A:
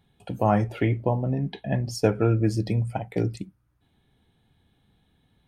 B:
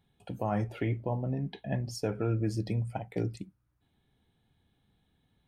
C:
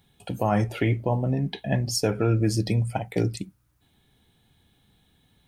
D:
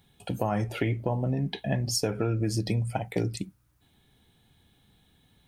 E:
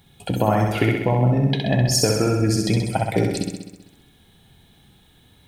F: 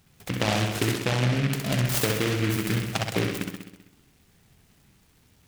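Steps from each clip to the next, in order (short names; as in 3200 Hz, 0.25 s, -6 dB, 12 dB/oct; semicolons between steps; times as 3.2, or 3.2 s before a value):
limiter -13 dBFS, peak gain reduction 6 dB; gain -6.5 dB
high shelf 3000 Hz +9 dB; gain +7.5 dB
compressor, threshold -23 dBFS, peak gain reduction 6.5 dB
flutter echo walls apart 11.1 m, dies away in 1 s; gain +7.5 dB
noise-modulated delay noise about 2000 Hz, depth 0.21 ms; gain -6 dB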